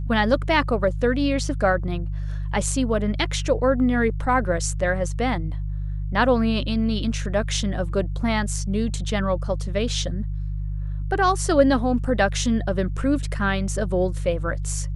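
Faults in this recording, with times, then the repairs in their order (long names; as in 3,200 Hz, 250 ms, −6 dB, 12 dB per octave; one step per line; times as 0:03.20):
mains hum 50 Hz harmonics 3 −27 dBFS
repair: hum removal 50 Hz, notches 3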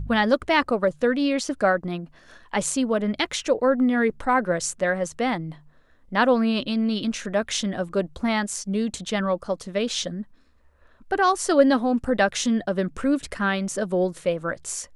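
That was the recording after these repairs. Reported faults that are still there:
none of them is left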